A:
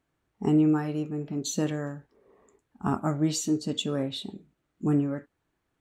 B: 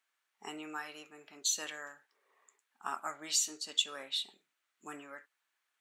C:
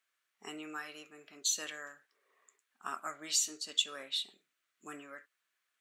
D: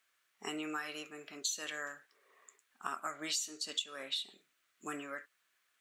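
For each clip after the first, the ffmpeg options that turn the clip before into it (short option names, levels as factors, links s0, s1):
-af "highpass=1500,volume=1.26"
-af "equalizer=f=860:w=5:g=-10.5"
-af "acompressor=threshold=0.00891:ratio=5,volume=2"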